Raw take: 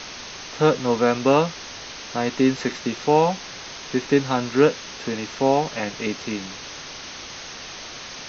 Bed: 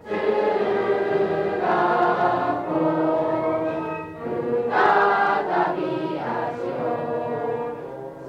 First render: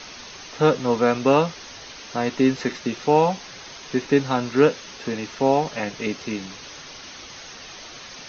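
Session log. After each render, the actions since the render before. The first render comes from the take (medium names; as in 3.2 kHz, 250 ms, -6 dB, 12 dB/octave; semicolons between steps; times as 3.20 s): noise reduction 6 dB, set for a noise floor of -37 dBFS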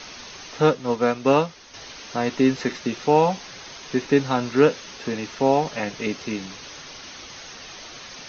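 0.66–1.74 s: upward expansion, over -29 dBFS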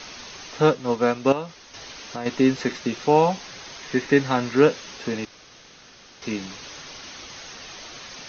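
1.32–2.26 s: compression 2.5:1, threshold -29 dBFS; 3.79–4.55 s: peaking EQ 1.9 kHz +7 dB 0.35 oct; 5.25–6.22 s: room tone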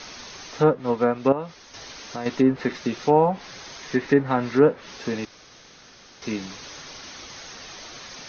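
low-pass that closes with the level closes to 1.3 kHz, closed at -14.5 dBFS; peaking EQ 2.8 kHz -3 dB 0.44 oct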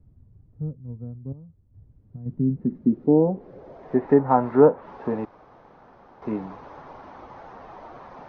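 low-pass sweep 100 Hz -> 900 Hz, 1.95–4.18 s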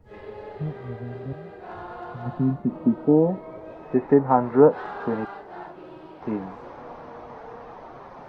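add bed -18 dB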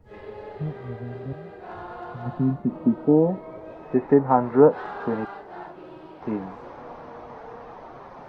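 no audible change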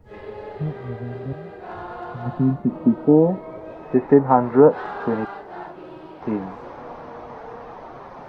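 trim +3.5 dB; peak limiter -2 dBFS, peak gain reduction 2 dB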